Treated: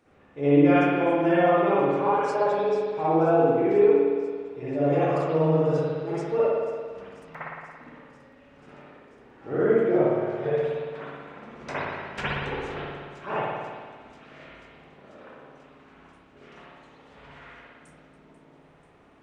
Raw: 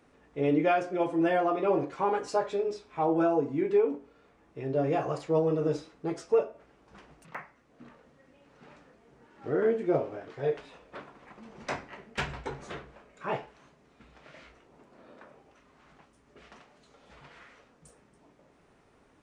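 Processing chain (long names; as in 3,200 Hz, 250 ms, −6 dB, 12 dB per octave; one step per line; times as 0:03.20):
delay with a high-pass on its return 489 ms, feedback 78%, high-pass 4,100 Hz, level −14 dB
spring reverb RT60 1.7 s, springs 56 ms, chirp 75 ms, DRR −9.5 dB
level −3.5 dB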